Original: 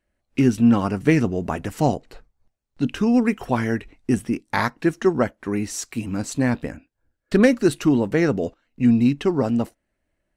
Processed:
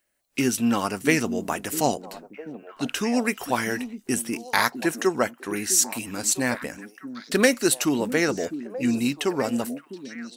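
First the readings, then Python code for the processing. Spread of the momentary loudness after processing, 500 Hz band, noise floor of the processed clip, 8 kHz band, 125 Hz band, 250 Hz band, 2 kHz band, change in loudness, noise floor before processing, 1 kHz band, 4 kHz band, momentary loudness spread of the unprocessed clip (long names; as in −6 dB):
16 LU, −3.0 dB, −56 dBFS, +11.0 dB, −10.5 dB, −6.0 dB, +2.5 dB, −3.0 dB, −77 dBFS, 0.0 dB, +6.5 dB, 11 LU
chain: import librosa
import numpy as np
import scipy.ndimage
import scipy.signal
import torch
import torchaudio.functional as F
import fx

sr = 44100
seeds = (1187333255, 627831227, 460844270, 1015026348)

y = fx.riaa(x, sr, side='recording')
y = fx.echo_stepped(y, sr, ms=654, hz=240.0, octaves=1.4, feedback_pct=70, wet_db=-8.5)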